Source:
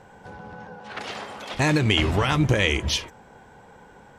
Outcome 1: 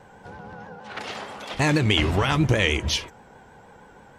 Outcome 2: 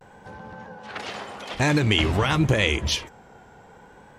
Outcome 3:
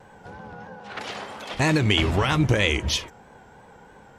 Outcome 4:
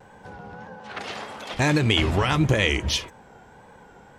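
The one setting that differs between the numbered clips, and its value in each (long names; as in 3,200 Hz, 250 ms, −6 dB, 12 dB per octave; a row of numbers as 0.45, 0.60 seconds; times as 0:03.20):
pitch vibrato, speed: 6.3, 0.51, 3.1, 1.7 Hertz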